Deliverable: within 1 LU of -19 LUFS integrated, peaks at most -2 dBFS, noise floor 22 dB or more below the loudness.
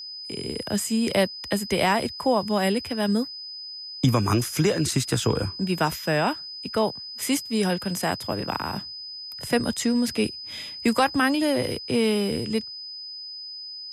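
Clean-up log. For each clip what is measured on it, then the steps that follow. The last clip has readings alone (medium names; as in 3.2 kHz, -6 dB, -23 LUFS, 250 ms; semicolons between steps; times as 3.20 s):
steady tone 5 kHz; tone level -35 dBFS; loudness -25.5 LUFS; peak level -9.0 dBFS; loudness target -19.0 LUFS
-> band-stop 5 kHz, Q 30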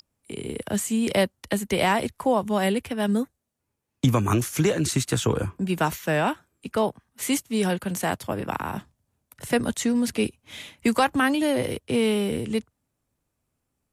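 steady tone not found; loudness -25.0 LUFS; peak level -9.5 dBFS; loudness target -19.0 LUFS
-> trim +6 dB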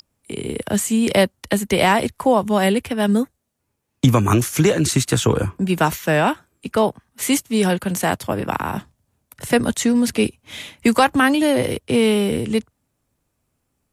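loudness -19.0 LUFS; peak level -3.5 dBFS; noise floor -74 dBFS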